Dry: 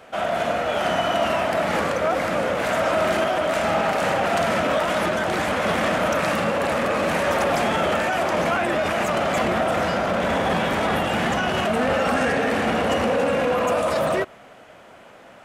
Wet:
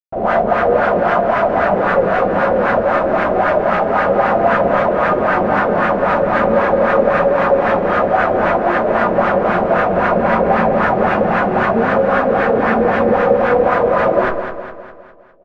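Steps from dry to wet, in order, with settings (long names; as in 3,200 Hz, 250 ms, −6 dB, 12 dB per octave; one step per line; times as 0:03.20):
loose part that buzzes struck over −29 dBFS, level −16 dBFS
comparator with hysteresis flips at −34 dBFS
four-comb reverb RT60 0.39 s, combs from 31 ms, DRR −9.5 dB
auto-filter low-pass sine 3.8 Hz 450–1,600 Hz
on a send: repeating echo 204 ms, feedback 51%, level −8.5 dB
on the sum: level −5 dB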